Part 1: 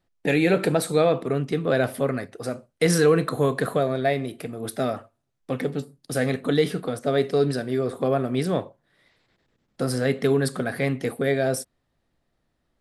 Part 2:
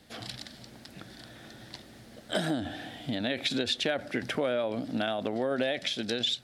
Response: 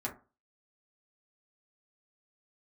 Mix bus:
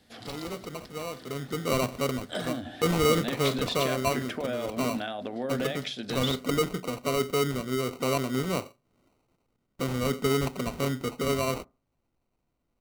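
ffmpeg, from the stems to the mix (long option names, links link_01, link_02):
-filter_complex "[0:a]acrusher=samples=26:mix=1:aa=0.000001,volume=-5.5dB,afade=type=in:start_time=1.15:duration=0.55:silence=0.251189,asplit=2[link_01][link_02];[link_02]volume=-20.5dB[link_03];[1:a]volume=-5.5dB,asplit=2[link_04][link_05];[link_05]volume=-11dB[link_06];[2:a]atrim=start_sample=2205[link_07];[link_03][link_06]amix=inputs=2:normalize=0[link_08];[link_08][link_07]afir=irnorm=-1:irlink=0[link_09];[link_01][link_04][link_09]amix=inputs=3:normalize=0"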